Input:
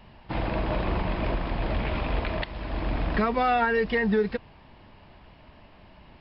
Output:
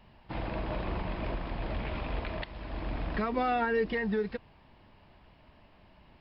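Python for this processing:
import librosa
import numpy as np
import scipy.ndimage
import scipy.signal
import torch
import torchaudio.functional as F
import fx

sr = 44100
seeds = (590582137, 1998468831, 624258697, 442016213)

y = fx.peak_eq(x, sr, hz=320.0, db=10.0, octaves=0.77, at=(3.32, 3.93))
y = y * 10.0 ** (-7.0 / 20.0)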